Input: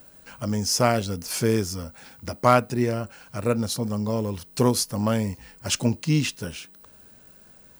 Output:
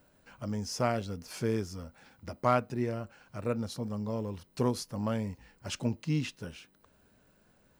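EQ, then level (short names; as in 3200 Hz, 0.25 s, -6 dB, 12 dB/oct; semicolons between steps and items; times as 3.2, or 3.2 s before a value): high shelf 5600 Hz -12 dB; -8.5 dB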